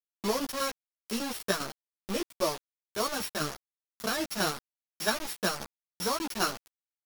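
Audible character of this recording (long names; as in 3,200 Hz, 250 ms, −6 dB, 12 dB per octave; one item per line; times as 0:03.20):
a buzz of ramps at a fixed pitch in blocks of 8 samples
tremolo saw down 5 Hz, depth 60%
a quantiser's noise floor 6 bits, dither none
a shimmering, thickened sound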